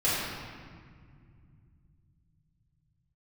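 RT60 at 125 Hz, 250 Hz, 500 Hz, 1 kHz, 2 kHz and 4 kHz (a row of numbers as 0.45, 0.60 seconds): 5.6, 4.0, 2.2, 1.9, 1.7, 1.3 seconds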